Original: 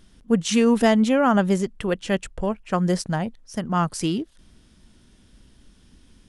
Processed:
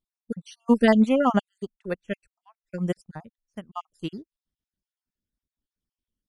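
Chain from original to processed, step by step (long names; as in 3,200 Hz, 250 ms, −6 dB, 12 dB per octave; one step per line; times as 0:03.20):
time-frequency cells dropped at random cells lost 48%
expander for the loud parts 2.5 to 1, over −40 dBFS
level +2.5 dB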